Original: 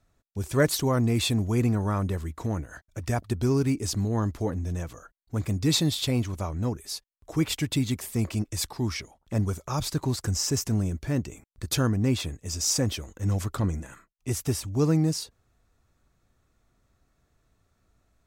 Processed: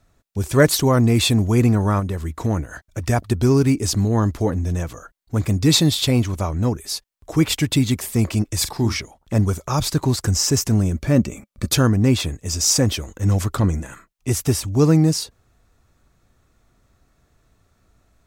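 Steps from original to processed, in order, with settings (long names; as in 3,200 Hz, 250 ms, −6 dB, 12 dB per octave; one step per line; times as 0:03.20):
0:01.99–0:02.42: downward compressor, threshold −29 dBFS, peak gain reduction 5.5 dB
0:08.57–0:08.99: double-tracking delay 43 ms −10.5 dB
0:10.94–0:11.69: hollow resonant body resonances 210/560/1,200/2,300 Hz, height 7 dB → 11 dB
level +8 dB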